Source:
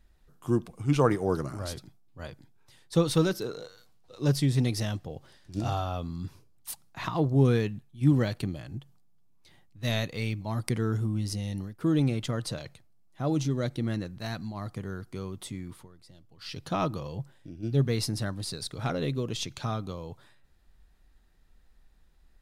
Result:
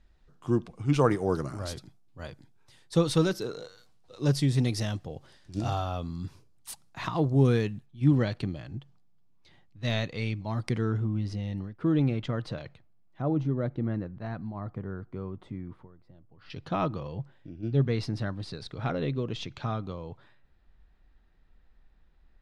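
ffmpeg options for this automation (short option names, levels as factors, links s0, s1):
-af "asetnsamples=n=441:p=0,asendcmd='0.94 lowpass f 9900;7.86 lowpass f 4900;10.92 lowpass f 2900;13.22 lowpass f 1400;16.5 lowpass f 3200',lowpass=5800"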